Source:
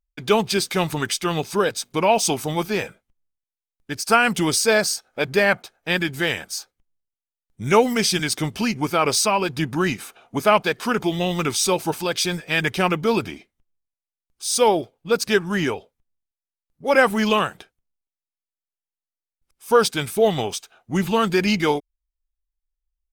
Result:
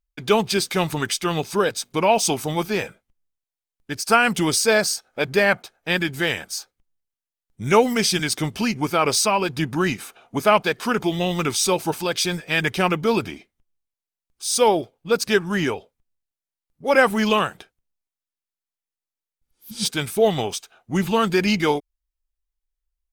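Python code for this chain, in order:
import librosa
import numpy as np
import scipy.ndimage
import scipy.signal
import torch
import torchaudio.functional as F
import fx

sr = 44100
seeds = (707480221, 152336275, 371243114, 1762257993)

y = fx.spec_repair(x, sr, seeds[0], start_s=19.5, length_s=0.32, low_hz=230.0, high_hz=11000.0, source='both')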